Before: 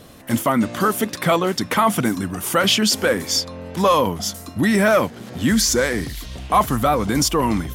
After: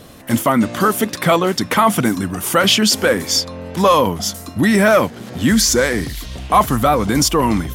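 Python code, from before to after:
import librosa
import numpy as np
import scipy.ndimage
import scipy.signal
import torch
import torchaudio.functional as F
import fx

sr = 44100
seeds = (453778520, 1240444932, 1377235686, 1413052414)

y = x * librosa.db_to_amplitude(3.5)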